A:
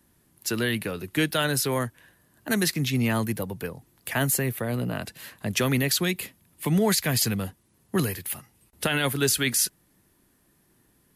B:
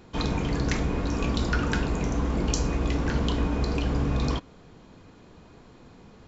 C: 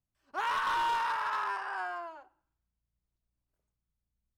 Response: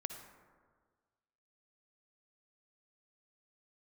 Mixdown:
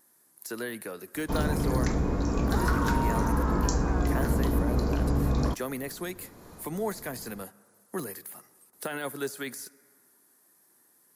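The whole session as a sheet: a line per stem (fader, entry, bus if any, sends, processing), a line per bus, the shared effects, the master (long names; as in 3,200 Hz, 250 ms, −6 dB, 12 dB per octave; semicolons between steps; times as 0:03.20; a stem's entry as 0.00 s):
−5.5 dB, 0.00 s, send −12.5 dB, Bessel high-pass filter 370 Hz, order 2; de-essing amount 55%; tape wow and flutter 17 cents
0.0 dB, 1.15 s, no send, no processing
−1.0 dB, 2.15 s, no send, no processing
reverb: on, RT60 1.6 s, pre-delay 48 ms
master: parametric band 2,900 Hz −13.5 dB 1.1 octaves; one half of a high-frequency compander encoder only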